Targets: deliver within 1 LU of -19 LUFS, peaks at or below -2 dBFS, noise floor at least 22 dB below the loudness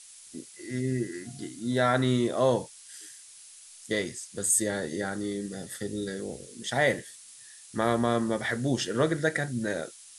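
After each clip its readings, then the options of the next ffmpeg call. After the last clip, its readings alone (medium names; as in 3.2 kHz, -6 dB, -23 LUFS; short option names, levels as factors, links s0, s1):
noise floor -50 dBFS; noise floor target -51 dBFS; loudness -29.0 LUFS; peak level -10.5 dBFS; loudness target -19.0 LUFS
-> -af "afftdn=nr=6:nf=-50"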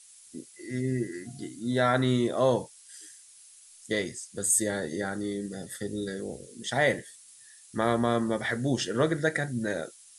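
noise floor -54 dBFS; loudness -29.0 LUFS; peak level -10.5 dBFS; loudness target -19.0 LUFS
-> -af "volume=3.16,alimiter=limit=0.794:level=0:latency=1"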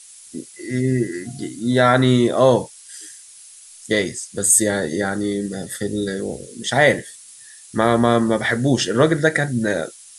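loudness -19.0 LUFS; peak level -2.0 dBFS; noise floor -44 dBFS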